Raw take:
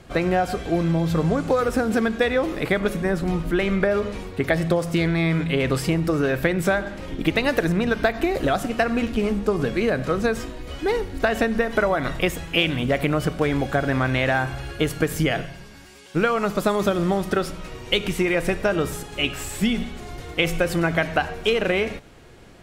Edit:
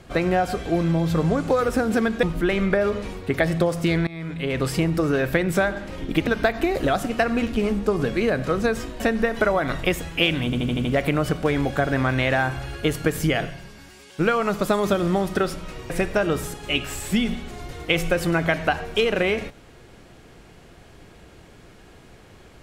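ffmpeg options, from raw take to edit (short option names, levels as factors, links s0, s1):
-filter_complex "[0:a]asplit=11[s0][s1][s2][s3][s4][s5][s6][s7][s8][s9][s10];[s0]atrim=end=2.232[s11];[s1]atrim=start=3.328:end=5.17,asetpts=PTS-STARTPTS,afade=t=out:st=1.838:d=0.004:c=hsin:silence=0.0891251[s12];[s2]atrim=start=5.17:end=7.372,asetpts=PTS-STARTPTS,afade=t=in:d=0.68:silence=0.0891251[s13];[s3]atrim=start=7.868:end=10.602[s14];[s4]atrim=start=11.358:end=12.892[s15];[s5]atrim=start=12.808:end=12.892[s16];[s6]atrim=start=12.808:end=12.892[s17];[s7]atrim=start=12.808:end=12.892[s18];[s8]atrim=start=12.808:end=12.892[s19];[s9]atrim=start=12.808:end=17.862[s20];[s10]atrim=start=18.388[s21];[s12][s13]concat=n=2:v=0:a=1[s22];[s11][s22]acrossfade=d=0.004:c1=hsin:c2=hsin[s23];[s23][s14]acrossfade=d=0.004:c1=hsin:c2=hsin[s24];[s24][s15]acrossfade=d=0.004:c1=hsin:c2=hsin[s25];[s25][s16]acrossfade=d=0.004:c1=hsin:c2=hsin[s26];[s26][s17]acrossfade=d=0.004:c1=hsin:c2=hsin[s27];[s27][s18]acrossfade=d=0.004:c1=hsin:c2=hsin[s28];[s28][s19]acrossfade=d=0.004:c1=hsin:c2=hsin[s29];[s29][s20]acrossfade=d=0.004:c1=hsin:c2=hsin[s30];[s30][s21]acrossfade=d=0.004:c1=hsin:c2=hsin"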